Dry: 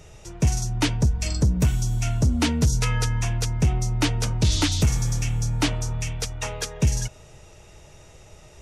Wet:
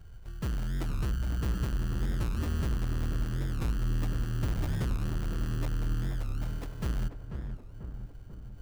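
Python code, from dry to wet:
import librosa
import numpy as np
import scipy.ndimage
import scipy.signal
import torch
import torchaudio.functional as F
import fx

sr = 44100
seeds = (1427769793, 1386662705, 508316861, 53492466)

p1 = fx.tone_stack(x, sr, knobs='10-0-1')
p2 = fx.rider(p1, sr, range_db=4, speed_s=2.0)
p3 = p1 + (p2 * librosa.db_to_amplitude(2.5))
p4 = fx.sample_hold(p3, sr, seeds[0], rate_hz=1500.0, jitter_pct=0)
p5 = np.clip(10.0 ** (29.0 / 20.0) * p4, -1.0, 1.0) / 10.0 ** (29.0 / 20.0)
p6 = fx.echo_filtered(p5, sr, ms=491, feedback_pct=64, hz=1300.0, wet_db=-7.0)
y = fx.record_warp(p6, sr, rpm=45.0, depth_cents=250.0)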